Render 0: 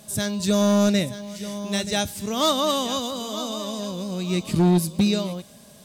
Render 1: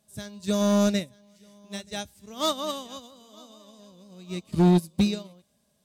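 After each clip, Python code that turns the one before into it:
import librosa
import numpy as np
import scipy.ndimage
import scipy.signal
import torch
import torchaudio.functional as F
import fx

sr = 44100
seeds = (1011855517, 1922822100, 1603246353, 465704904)

y = fx.peak_eq(x, sr, hz=64.0, db=8.5, octaves=0.36)
y = fx.upward_expand(y, sr, threshold_db=-30.0, expansion=2.5)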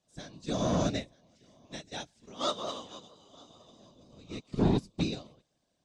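y = scipy.signal.sosfilt(scipy.signal.butter(4, 7000.0, 'lowpass', fs=sr, output='sos'), x)
y = fx.low_shelf(y, sr, hz=200.0, db=-5.0)
y = fx.whisperise(y, sr, seeds[0])
y = y * 10.0 ** (-5.5 / 20.0)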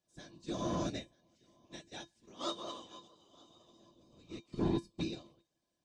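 y = fx.comb_fb(x, sr, f0_hz=340.0, decay_s=0.15, harmonics='odd', damping=0.0, mix_pct=80)
y = y * 10.0 ** (4.0 / 20.0)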